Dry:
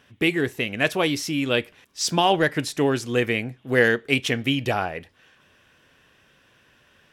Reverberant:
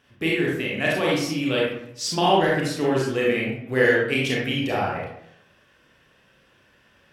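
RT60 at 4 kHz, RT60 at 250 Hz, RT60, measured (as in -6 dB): 0.45 s, 0.80 s, 0.75 s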